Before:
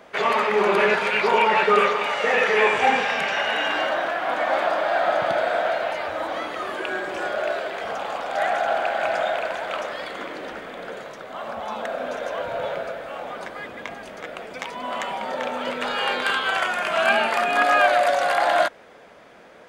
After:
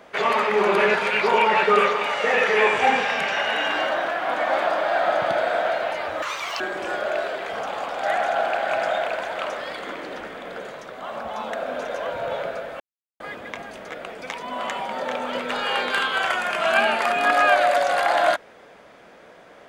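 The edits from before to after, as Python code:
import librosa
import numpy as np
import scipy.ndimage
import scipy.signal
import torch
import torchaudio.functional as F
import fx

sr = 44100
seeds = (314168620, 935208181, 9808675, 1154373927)

y = fx.edit(x, sr, fx.speed_span(start_s=6.22, length_s=0.7, speed=1.84),
    fx.silence(start_s=13.12, length_s=0.4), tone=tone)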